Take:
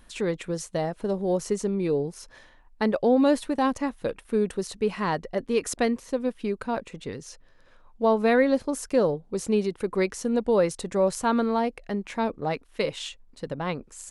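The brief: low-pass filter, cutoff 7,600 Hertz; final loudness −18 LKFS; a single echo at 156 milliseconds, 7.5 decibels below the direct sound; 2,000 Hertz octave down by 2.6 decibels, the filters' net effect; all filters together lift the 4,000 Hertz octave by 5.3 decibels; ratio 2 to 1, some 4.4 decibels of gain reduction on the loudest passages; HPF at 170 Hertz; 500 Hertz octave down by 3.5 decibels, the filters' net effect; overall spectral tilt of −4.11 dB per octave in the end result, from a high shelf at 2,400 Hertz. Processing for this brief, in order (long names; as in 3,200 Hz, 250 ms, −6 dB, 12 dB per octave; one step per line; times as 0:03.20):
high-pass filter 170 Hz
low-pass filter 7,600 Hz
parametric band 500 Hz −4 dB
parametric band 2,000 Hz −6 dB
high-shelf EQ 2,400 Hz +4 dB
parametric band 4,000 Hz +5 dB
downward compressor 2 to 1, threshold −27 dBFS
single-tap delay 156 ms −7.5 dB
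level +13 dB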